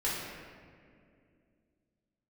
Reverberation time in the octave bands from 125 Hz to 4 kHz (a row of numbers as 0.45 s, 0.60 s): 2.9 s, 3.2 s, 2.7 s, 1.9 s, 1.9 s, 1.2 s